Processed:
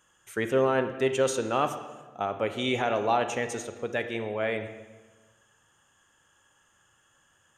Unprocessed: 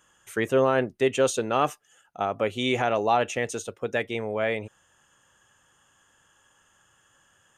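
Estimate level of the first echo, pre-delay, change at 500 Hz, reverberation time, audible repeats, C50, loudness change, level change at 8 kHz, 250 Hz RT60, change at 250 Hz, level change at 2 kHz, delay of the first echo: no echo, 32 ms, -2.5 dB, 1.3 s, no echo, 9.5 dB, -2.5 dB, -3.0 dB, 1.5 s, -2.0 dB, -2.5 dB, no echo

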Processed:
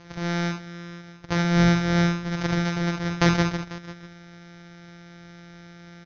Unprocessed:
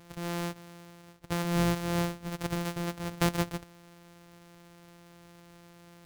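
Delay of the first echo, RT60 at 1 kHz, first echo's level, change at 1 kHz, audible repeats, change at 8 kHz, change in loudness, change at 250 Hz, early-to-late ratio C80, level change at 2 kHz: 47 ms, no reverb, -6.0 dB, +6.5 dB, 2, +2.5 dB, +8.5 dB, +9.0 dB, no reverb, +11.0 dB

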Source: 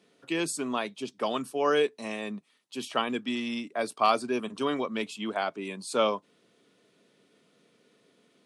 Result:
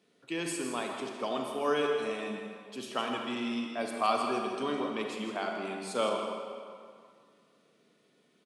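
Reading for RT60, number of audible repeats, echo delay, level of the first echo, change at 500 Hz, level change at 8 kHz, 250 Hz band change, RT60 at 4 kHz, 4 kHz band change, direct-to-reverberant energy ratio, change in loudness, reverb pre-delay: 2.1 s, 1, 161 ms, -10.0 dB, -3.0 dB, -3.5 dB, -3.0 dB, 1.6 s, -3.5 dB, 1.0 dB, -3.5 dB, 34 ms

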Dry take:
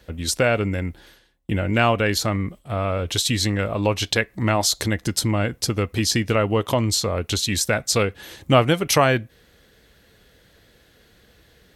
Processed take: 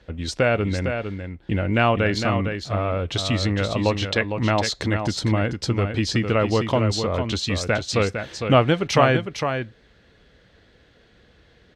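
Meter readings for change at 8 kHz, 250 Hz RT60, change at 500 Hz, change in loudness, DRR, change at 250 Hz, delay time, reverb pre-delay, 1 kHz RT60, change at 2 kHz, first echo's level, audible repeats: -9.5 dB, no reverb, +0.5 dB, -1.0 dB, no reverb, +0.5 dB, 456 ms, no reverb, no reverb, -0.5 dB, -7.0 dB, 1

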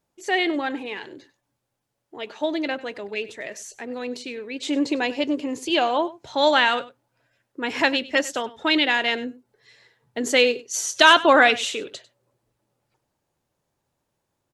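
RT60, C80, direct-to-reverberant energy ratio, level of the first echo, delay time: no reverb, no reverb, no reverb, -18.5 dB, 98 ms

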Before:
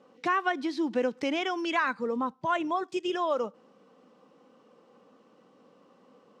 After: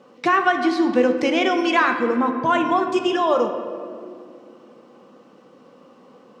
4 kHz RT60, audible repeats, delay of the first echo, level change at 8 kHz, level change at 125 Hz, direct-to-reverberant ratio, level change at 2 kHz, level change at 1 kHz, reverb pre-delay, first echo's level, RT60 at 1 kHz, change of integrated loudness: 1.2 s, no echo, no echo, no reading, +11.0 dB, 4.5 dB, +9.5 dB, +10.0 dB, 5 ms, no echo, 2.0 s, +10.0 dB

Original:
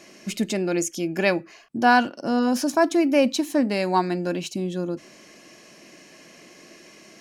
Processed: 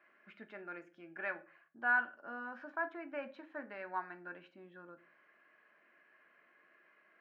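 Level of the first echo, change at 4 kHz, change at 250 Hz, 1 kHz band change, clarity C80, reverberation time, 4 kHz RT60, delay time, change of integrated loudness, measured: no echo, -32.0 dB, -29.5 dB, -18.0 dB, 22.5 dB, 0.40 s, 0.30 s, no echo, -17.0 dB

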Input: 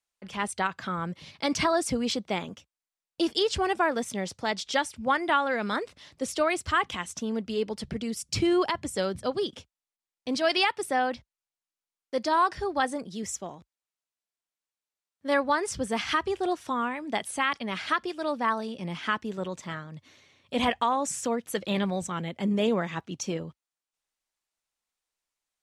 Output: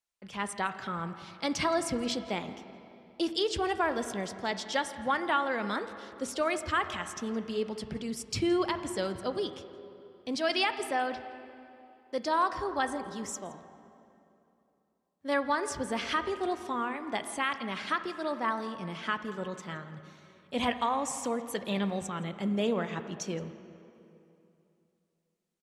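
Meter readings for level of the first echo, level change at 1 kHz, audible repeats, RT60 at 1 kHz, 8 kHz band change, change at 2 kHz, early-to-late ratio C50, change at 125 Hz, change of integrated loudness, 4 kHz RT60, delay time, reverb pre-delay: -22.0 dB, -3.5 dB, 1, 2.8 s, -4.0 dB, -3.5 dB, 10.5 dB, -3.5 dB, -3.5 dB, 2.3 s, 168 ms, 11 ms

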